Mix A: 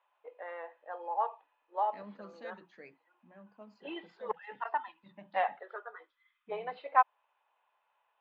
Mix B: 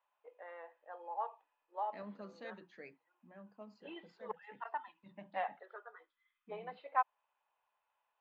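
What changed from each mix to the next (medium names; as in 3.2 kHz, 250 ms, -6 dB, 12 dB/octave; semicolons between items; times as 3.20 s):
first voice -7.5 dB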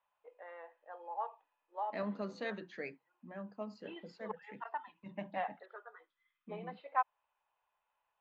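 second voice +9.5 dB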